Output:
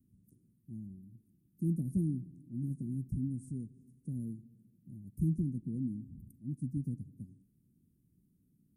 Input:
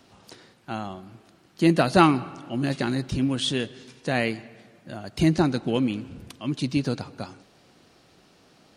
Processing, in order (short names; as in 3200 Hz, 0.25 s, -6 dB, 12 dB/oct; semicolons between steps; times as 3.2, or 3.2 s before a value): inverse Chebyshev band-stop 990–3300 Hz, stop band 80 dB; gain -7 dB